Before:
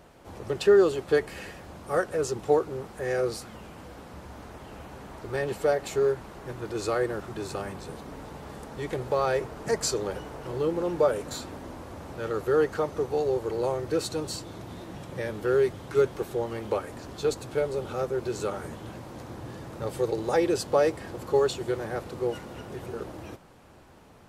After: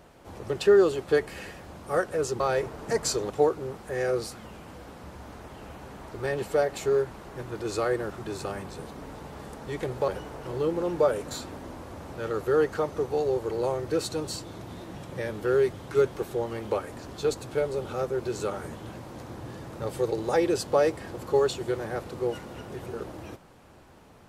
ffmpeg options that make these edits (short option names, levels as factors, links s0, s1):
-filter_complex "[0:a]asplit=4[s0][s1][s2][s3];[s0]atrim=end=2.402[s4];[s1]atrim=start=9.178:end=10.082[s5];[s2]atrim=start=2.398:end=9.182[s6];[s3]atrim=start=10.078[s7];[s4][s5]acrossfade=d=0.004:c1=hsin:c2=hsin[s8];[s8][s6]acrossfade=d=0.004:c1=hsin:c2=hsin[s9];[s9][s7]acrossfade=d=0.004:c1=hsin:c2=hsin"